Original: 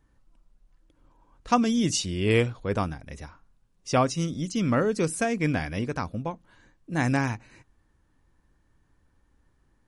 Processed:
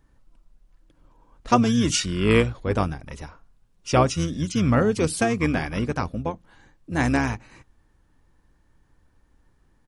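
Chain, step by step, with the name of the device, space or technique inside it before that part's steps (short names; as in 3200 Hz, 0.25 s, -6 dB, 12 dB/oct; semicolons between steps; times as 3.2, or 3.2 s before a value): octave pedal (harmoniser -12 st -7 dB); gain +3 dB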